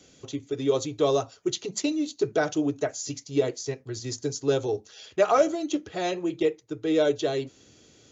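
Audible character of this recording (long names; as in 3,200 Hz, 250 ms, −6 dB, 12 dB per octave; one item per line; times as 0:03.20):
background noise floor −57 dBFS
spectral slope −4.5 dB per octave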